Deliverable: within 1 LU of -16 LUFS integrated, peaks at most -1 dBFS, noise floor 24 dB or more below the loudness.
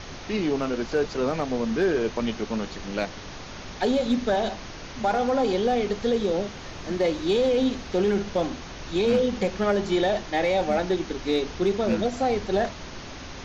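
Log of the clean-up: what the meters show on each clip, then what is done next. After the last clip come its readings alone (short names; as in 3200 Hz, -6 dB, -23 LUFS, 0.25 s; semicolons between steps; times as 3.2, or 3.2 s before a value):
clipped 0.2%; flat tops at -15.0 dBFS; noise floor -39 dBFS; noise floor target -50 dBFS; loudness -25.5 LUFS; peak -15.0 dBFS; loudness target -16.0 LUFS
-> clip repair -15 dBFS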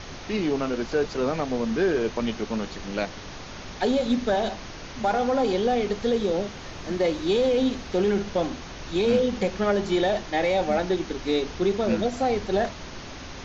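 clipped 0.0%; noise floor -39 dBFS; noise floor target -50 dBFS
-> noise print and reduce 11 dB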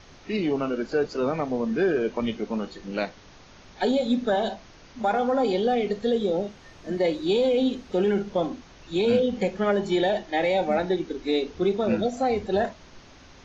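noise floor -50 dBFS; loudness -25.5 LUFS; peak -11.5 dBFS; loudness target -16.0 LUFS
-> gain +9.5 dB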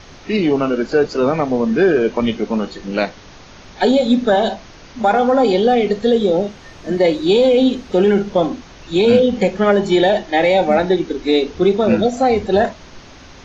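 loudness -16.0 LUFS; peak -2.0 dBFS; noise floor -41 dBFS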